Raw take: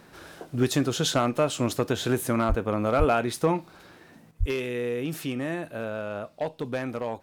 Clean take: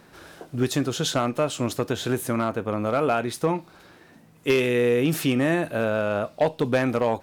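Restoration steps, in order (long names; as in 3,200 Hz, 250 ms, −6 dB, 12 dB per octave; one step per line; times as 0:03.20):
0:02.48–0:02.60: high-pass filter 140 Hz 24 dB per octave
0:02.98–0:03.10: high-pass filter 140 Hz 24 dB per octave
0:04.31: level correction +8.5 dB
0:04.39–0:04.51: high-pass filter 140 Hz 24 dB per octave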